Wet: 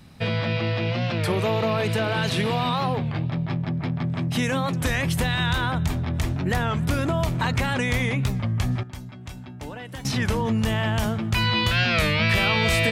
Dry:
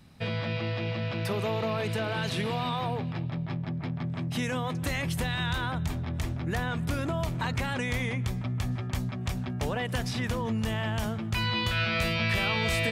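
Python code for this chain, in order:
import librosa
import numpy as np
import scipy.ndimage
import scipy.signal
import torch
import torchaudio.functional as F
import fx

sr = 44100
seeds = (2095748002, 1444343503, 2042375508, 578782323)

y = fx.comb_fb(x, sr, f0_hz=300.0, decay_s=0.21, harmonics='odd', damping=0.0, mix_pct=80, at=(8.83, 10.06))
y = fx.record_warp(y, sr, rpm=33.33, depth_cents=160.0)
y = y * librosa.db_to_amplitude(6.5)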